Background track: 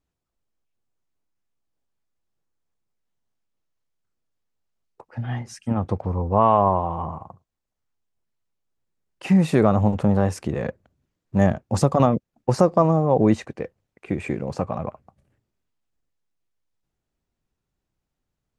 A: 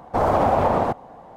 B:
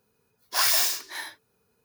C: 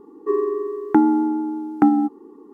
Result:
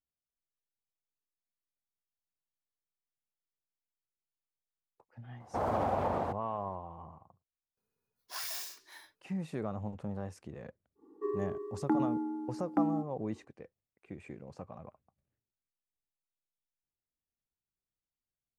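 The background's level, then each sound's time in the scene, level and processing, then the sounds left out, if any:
background track -20 dB
5.4 add A -13 dB + HPF 51 Hz
7.77 add B -17.5 dB
10.95 add C -14.5 dB, fades 0.10 s

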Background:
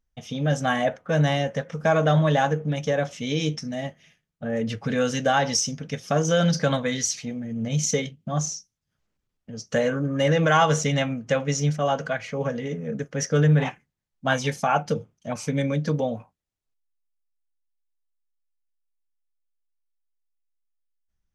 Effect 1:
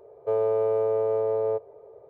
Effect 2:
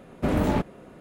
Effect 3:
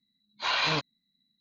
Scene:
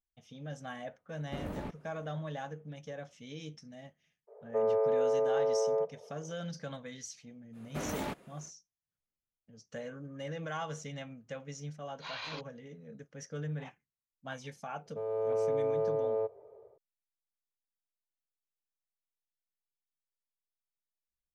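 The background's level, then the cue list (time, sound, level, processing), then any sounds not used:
background -19.5 dB
1.09 add 2 -16.5 dB
4.27 add 1 -3 dB, fades 0.02 s + elliptic band-pass 450–2100 Hz
7.52 add 2 -10 dB, fades 0.05 s + tilt +2.5 dB/oct
11.6 add 3 -15 dB
14.69 add 1 -15 dB + AGC gain up to 9 dB

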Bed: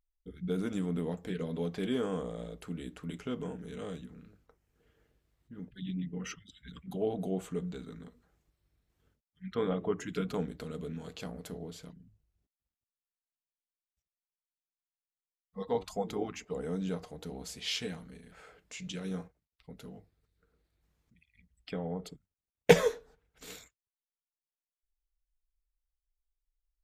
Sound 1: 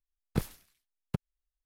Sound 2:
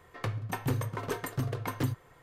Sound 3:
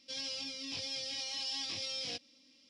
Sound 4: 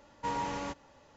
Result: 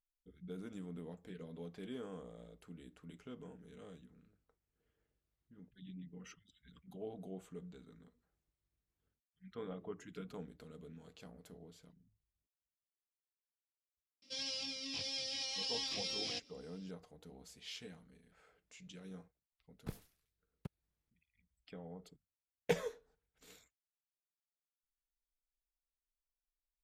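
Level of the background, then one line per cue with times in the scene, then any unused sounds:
bed -13.5 dB
14.22 add 3 -1.5 dB
19.51 add 1 -14.5 dB
not used: 2, 4

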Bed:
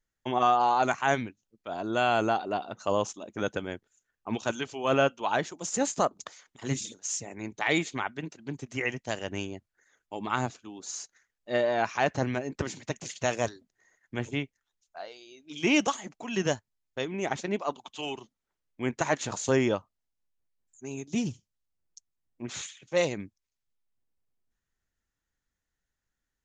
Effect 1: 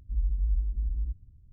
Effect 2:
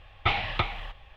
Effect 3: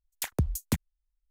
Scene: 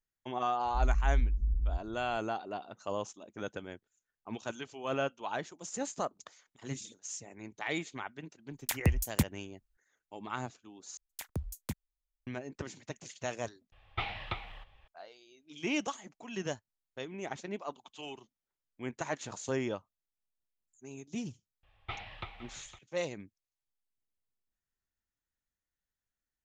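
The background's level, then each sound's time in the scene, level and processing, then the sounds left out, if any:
bed -9 dB
0.65 add 1 -0.5 dB
8.47 add 3
10.97 replace with 3 -10 dB
13.72 replace with 2 -10.5 dB
21.63 add 2 -16 dB + echo 0.51 s -14 dB

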